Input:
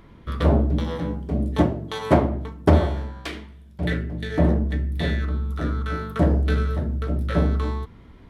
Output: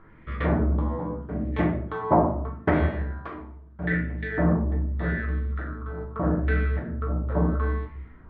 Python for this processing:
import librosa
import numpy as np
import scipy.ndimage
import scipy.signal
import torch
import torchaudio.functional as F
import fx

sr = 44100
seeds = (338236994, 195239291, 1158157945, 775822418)

y = fx.level_steps(x, sr, step_db=10, at=(5.58, 6.24))
y = fx.filter_lfo_lowpass(y, sr, shape='sine', hz=0.79, low_hz=930.0, high_hz=2200.0, q=3.4)
y = fx.room_shoebox(y, sr, seeds[0], volume_m3=66.0, walls='mixed', distance_m=0.55)
y = y * librosa.db_to_amplitude(-7.0)